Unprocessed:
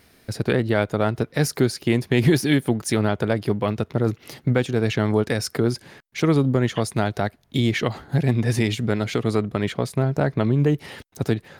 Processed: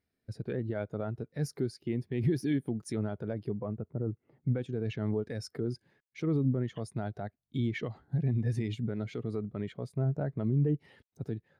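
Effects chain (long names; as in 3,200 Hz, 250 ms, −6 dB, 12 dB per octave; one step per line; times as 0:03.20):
0:03.58–0:04.43: low-pass filter 1,500 Hz 12 dB per octave
brickwall limiter −13.5 dBFS, peak gain reduction 6 dB
every bin expanded away from the loudest bin 1.5 to 1
level −5.5 dB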